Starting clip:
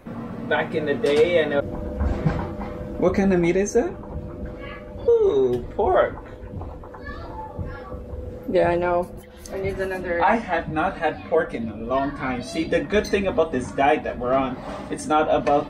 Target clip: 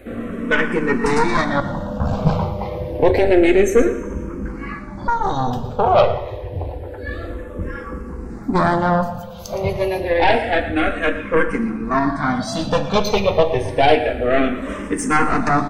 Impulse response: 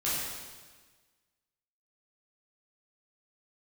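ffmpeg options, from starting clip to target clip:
-filter_complex "[0:a]aecho=1:1:116:0.2,aeval=exprs='0.531*(cos(1*acos(clip(val(0)/0.531,-1,1)))-cos(1*PI/2))+0.168*(cos(4*acos(clip(val(0)/0.531,-1,1)))-cos(4*PI/2))+0.075*(cos(5*acos(clip(val(0)/0.531,-1,1)))-cos(5*PI/2))':c=same,asplit=2[s0][s1];[1:a]atrim=start_sample=2205[s2];[s1][s2]afir=irnorm=-1:irlink=0,volume=0.119[s3];[s0][s3]amix=inputs=2:normalize=0,asplit=2[s4][s5];[s5]afreqshift=-0.28[s6];[s4][s6]amix=inputs=2:normalize=1,volume=1.41"

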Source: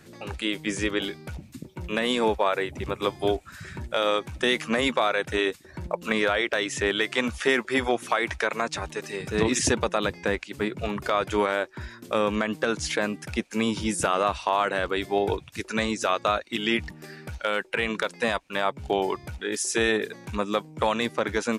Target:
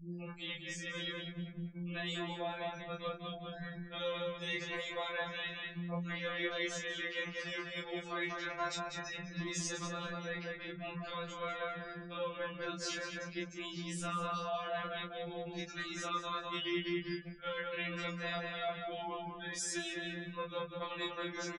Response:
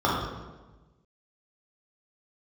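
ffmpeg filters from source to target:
-filter_complex "[0:a]lowpass=5500,bass=f=250:g=11,treble=f=4000:g=9,bandreject=f=870:w=24,afftfilt=real='re*gte(hypot(re,im),0.0158)':imag='im*gte(hypot(re,im),0.0158)':win_size=1024:overlap=0.75,dynaudnorm=f=590:g=3:m=1.68,equalizer=f=250:t=o:w=2.1:g=-5.5,asplit=2[s0][s1];[s1]adelay=28,volume=0.596[s2];[s0][s2]amix=inputs=2:normalize=0,asplit=2[s3][s4];[s4]adelay=197,lowpass=f=2600:p=1,volume=0.631,asplit=2[s5][s6];[s6]adelay=197,lowpass=f=2600:p=1,volume=0.33,asplit=2[s7][s8];[s8]adelay=197,lowpass=f=2600:p=1,volume=0.33,asplit=2[s9][s10];[s10]adelay=197,lowpass=f=2600:p=1,volume=0.33[s11];[s3][s5][s7][s9][s11]amix=inputs=5:normalize=0,areverse,acompressor=threshold=0.0112:ratio=5,areverse,afftfilt=real='re*2.83*eq(mod(b,8),0)':imag='im*2.83*eq(mod(b,8),0)':win_size=2048:overlap=0.75,volume=1.5"

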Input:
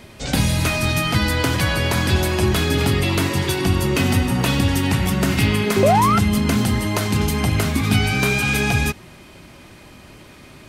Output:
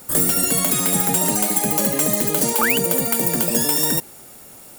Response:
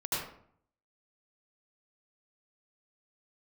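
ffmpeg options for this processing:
-af "asetrate=98343,aresample=44100,aexciter=amount=7:drive=3.8:freq=7500,volume=0.562"

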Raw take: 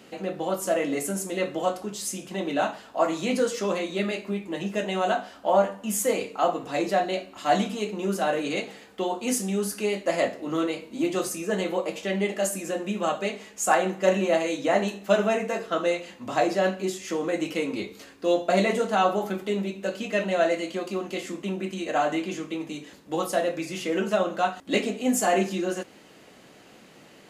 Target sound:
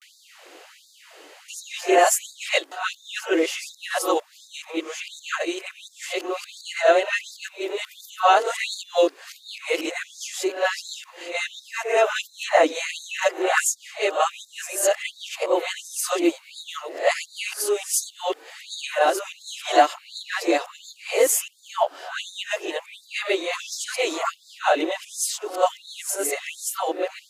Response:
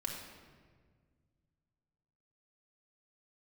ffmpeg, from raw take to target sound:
-af "areverse,afftfilt=real='re*gte(b*sr/1024,270*pow(3600/270,0.5+0.5*sin(2*PI*1.4*pts/sr)))':imag='im*gte(b*sr/1024,270*pow(3600/270,0.5+0.5*sin(2*PI*1.4*pts/sr)))':win_size=1024:overlap=0.75,volume=2.11"

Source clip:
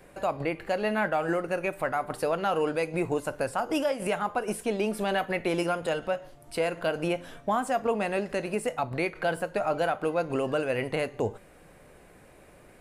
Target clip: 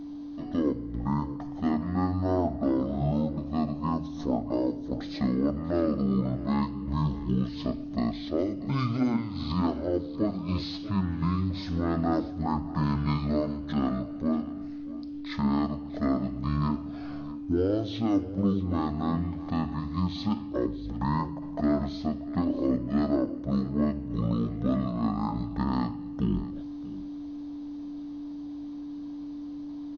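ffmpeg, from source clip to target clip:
-filter_complex "[0:a]bandreject=f=62.93:t=h:w=4,bandreject=f=125.86:t=h:w=4,bandreject=f=188.79:t=h:w=4,bandreject=f=251.72:t=h:w=4,bandreject=f=314.65:t=h:w=4,bandreject=f=377.58:t=h:w=4,aeval=exprs='val(0)+0.0158*sin(2*PI*680*n/s)':c=same,asplit=2[s0][s1];[s1]aecho=0:1:272:0.141[s2];[s0][s2]amix=inputs=2:normalize=0,asetrate=18846,aresample=44100"

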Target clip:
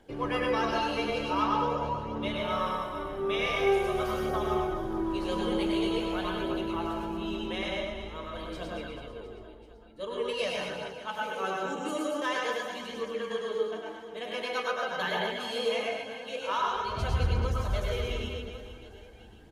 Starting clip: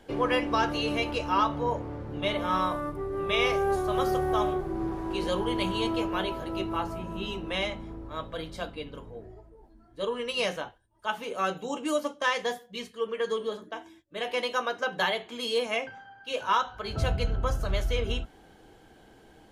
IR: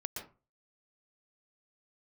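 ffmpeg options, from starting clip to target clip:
-filter_complex "[0:a]aecho=1:1:100|240|436|710.4|1095:0.631|0.398|0.251|0.158|0.1[s0];[1:a]atrim=start_sample=2205[s1];[s0][s1]afir=irnorm=-1:irlink=0,aphaser=in_gain=1:out_gain=1:delay=4.3:decay=0.28:speed=0.46:type=triangular,volume=0.631"

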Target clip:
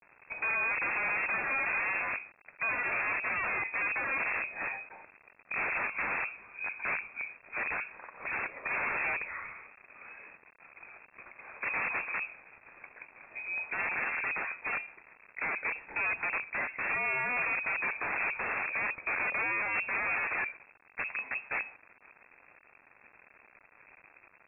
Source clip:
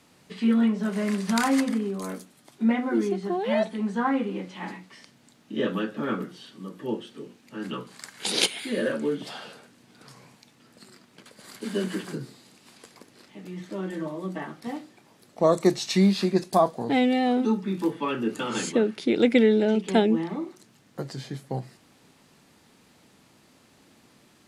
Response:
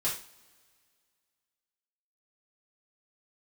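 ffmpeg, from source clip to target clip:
-filter_complex "[0:a]lowshelf=f=91:g=-2,acrossover=split=100|1600[s0][s1][s2];[s0]acompressor=threshold=0.00112:ratio=4[s3];[s1]acompressor=threshold=0.0708:ratio=4[s4];[s2]acompressor=threshold=0.00562:ratio=4[s5];[s3][s4][s5]amix=inputs=3:normalize=0,asplit=2[s6][s7];[s7]alimiter=limit=0.0794:level=0:latency=1:release=10,volume=0.891[s8];[s6][s8]amix=inputs=2:normalize=0,volume=12.6,asoftclip=hard,volume=0.0794,aresample=8000,acrusher=bits=7:mix=0:aa=0.000001,aresample=44100,aeval=exprs='0.106*(cos(1*acos(clip(val(0)/0.106,-1,1)))-cos(1*PI/2))+0.00119*(cos(4*acos(clip(val(0)/0.106,-1,1)))-cos(4*PI/2))+0.00119*(cos(6*acos(clip(val(0)/0.106,-1,1)))-cos(6*PI/2))':c=same,aeval=exprs='(mod(15*val(0)+1,2)-1)/15':c=same,lowpass=f=2300:t=q:w=0.5098,lowpass=f=2300:t=q:w=0.6013,lowpass=f=2300:t=q:w=0.9,lowpass=f=2300:t=q:w=2.563,afreqshift=-2700,volume=0.631"

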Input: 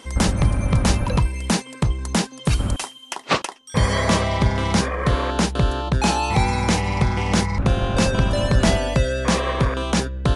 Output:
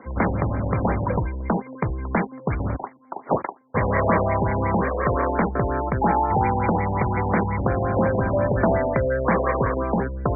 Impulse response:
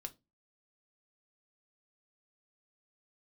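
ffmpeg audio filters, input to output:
-filter_complex "[0:a]highpass=f=67:w=0.5412,highpass=f=67:w=1.3066,acrossover=split=320|1100[s0][s1][s2];[s0]asoftclip=type=tanh:threshold=0.0631[s3];[s3][s1][s2]amix=inputs=3:normalize=0,afftfilt=real='re*lt(b*sr/1024,930*pow(2400/930,0.5+0.5*sin(2*PI*5.6*pts/sr)))':imag='im*lt(b*sr/1024,930*pow(2400/930,0.5+0.5*sin(2*PI*5.6*pts/sr)))':win_size=1024:overlap=0.75,volume=1.33"

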